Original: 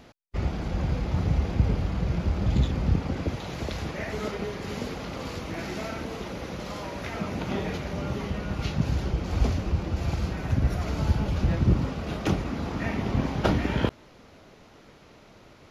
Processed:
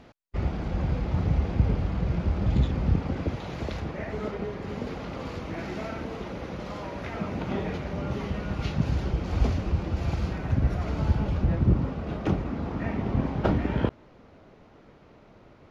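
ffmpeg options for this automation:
-af "asetnsamples=n=441:p=0,asendcmd='3.8 lowpass f 1400;4.87 lowpass f 2300;8.11 lowpass f 4000;10.38 lowpass f 2300;11.37 lowpass f 1300',lowpass=f=2800:p=1"

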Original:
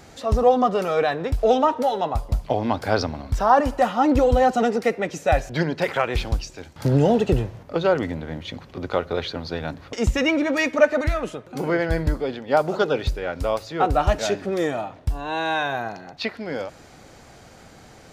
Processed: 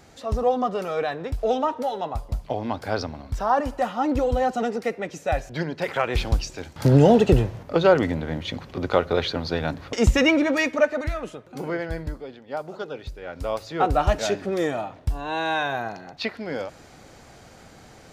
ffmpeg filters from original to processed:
-af "volume=5.01,afade=t=in:st=5.78:d=0.72:silence=0.398107,afade=t=out:st=10.17:d=0.76:silence=0.398107,afade=t=out:st=11.6:d=0.7:silence=0.446684,afade=t=in:st=13.12:d=0.64:silence=0.281838"

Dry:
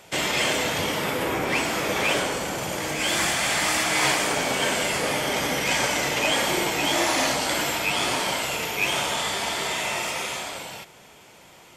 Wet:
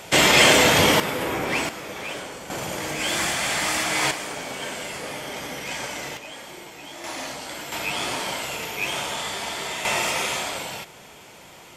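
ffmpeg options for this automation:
-af "asetnsamples=n=441:p=0,asendcmd='1 volume volume -0.5dB;1.69 volume volume -9.5dB;2.5 volume volume -1dB;4.11 volume volume -8dB;6.17 volume volume -16.5dB;7.04 volume volume -10dB;7.72 volume volume -3dB;9.85 volume volume 4dB',volume=2.82"

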